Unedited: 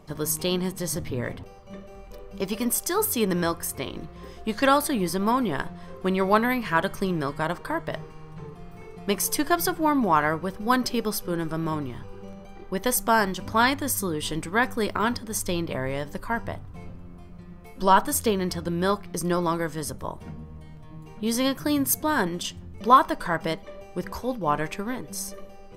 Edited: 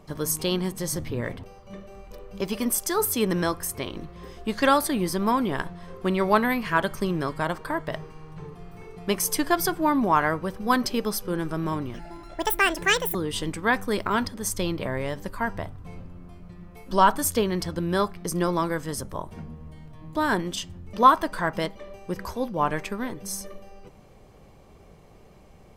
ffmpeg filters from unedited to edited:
-filter_complex "[0:a]asplit=4[a][b][c][d];[a]atrim=end=11.944[e];[b]atrim=start=11.94:end=14.04,asetpts=PTS-STARTPTS,asetrate=76734,aresample=44100,atrim=end_sample=53224,asetpts=PTS-STARTPTS[f];[c]atrim=start=14.036:end=21.042[g];[d]atrim=start=22.018[h];[e][f]acrossfade=d=0.004:c1=hsin:c2=hsin[i];[i][g]acrossfade=d=0.004:c1=hsin:c2=hsin[j];[j][h]acrossfade=d=0.004:c1=hsin:c2=hsin"

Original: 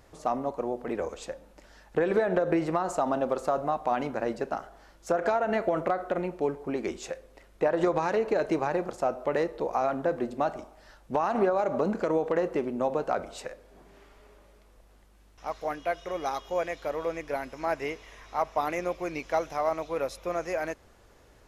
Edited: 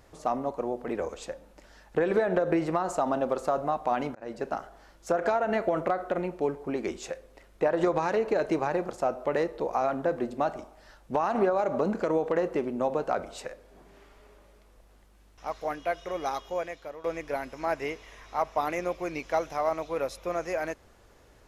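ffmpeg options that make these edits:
-filter_complex "[0:a]asplit=3[a][b][c];[a]atrim=end=4.15,asetpts=PTS-STARTPTS,afade=t=out:st=4.146:d=0.004:c=hsin[d];[b]atrim=start=4.15:end=17.04,asetpts=PTS-STARTPTS,afade=t=in:d=0.32,afade=t=out:st=12.21:d=0.68:silence=0.211349[e];[c]atrim=start=17.04,asetpts=PTS-STARTPTS,afade=t=in:d=0.004:c=hsin:silence=0.211349[f];[d][e][f]concat=n=3:v=0:a=1"

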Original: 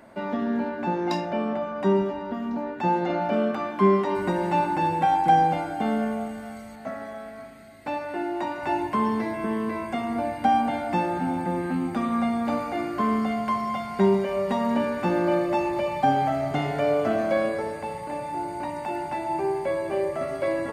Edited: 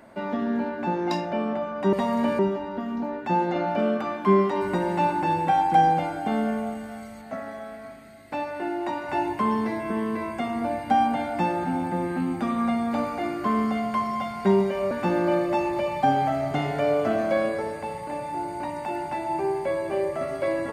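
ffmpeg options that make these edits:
-filter_complex "[0:a]asplit=4[a][b][c][d];[a]atrim=end=1.932[e];[b]atrim=start=14.448:end=14.912[f];[c]atrim=start=1.928:end=14.452[g];[d]atrim=start=14.908[h];[e][f]acrossfade=d=0.004:c1=hsin:c2=hsin[i];[i][g]acrossfade=d=0.004:c1=hsin:c2=hsin[j];[j][h]acrossfade=d=0.004:c1=hsin:c2=hsin"

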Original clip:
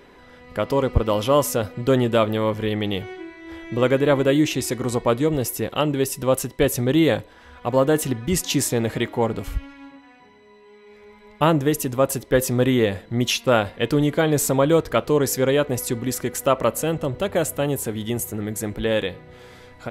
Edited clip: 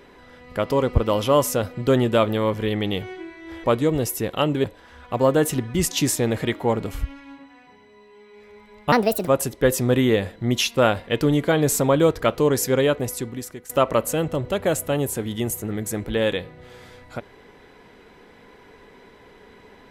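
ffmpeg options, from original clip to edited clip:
-filter_complex "[0:a]asplit=6[a][b][c][d][e][f];[a]atrim=end=3.642[g];[b]atrim=start=5.028:end=6.032[h];[c]atrim=start=7.168:end=11.454[i];[d]atrim=start=11.45:end=11.97,asetpts=PTS-STARTPTS,asetrate=64827,aresample=44100[j];[e]atrim=start=11.966:end=16.39,asetpts=PTS-STARTPTS,afade=t=out:st=3.584:d=0.84:silence=0.125893[k];[f]atrim=start=16.39,asetpts=PTS-STARTPTS,afade=t=in:d=0.004:c=hsin:silence=0.125893[l];[g][h]acrossfade=d=0.004:c1=hsin:c2=hsin[m];[m][i]acrossfade=d=0.004:c1=hsin:c2=hsin[n];[n][j]acrossfade=d=0.004:c1=hsin:c2=hsin[o];[k][l]concat=n=2:v=0:a=1[p];[o][p]acrossfade=d=0.004:c1=hsin:c2=hsin"

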